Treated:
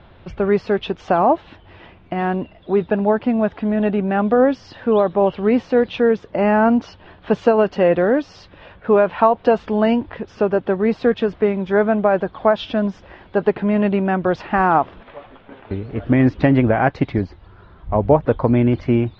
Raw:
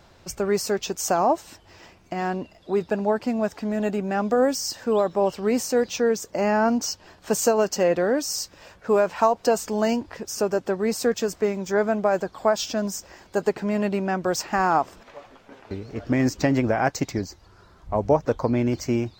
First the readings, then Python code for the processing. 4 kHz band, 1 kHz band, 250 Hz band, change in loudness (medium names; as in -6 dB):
-3.0 dB, +5.0 dB, +7.0 dB, +5.5 dB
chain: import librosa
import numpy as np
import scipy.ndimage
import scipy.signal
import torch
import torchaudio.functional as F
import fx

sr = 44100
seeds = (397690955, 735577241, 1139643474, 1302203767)

y = scipy.signal.sosfilt(scipy.signal.cheby1(4, 1.0, 3500.0, 'lowpass', fs=sr, output='sos'), x)
y = fx.low_shelf(y, sr, hz=240.0, db=6.0)
y = y * librosa.db_to_amplitude(5.0)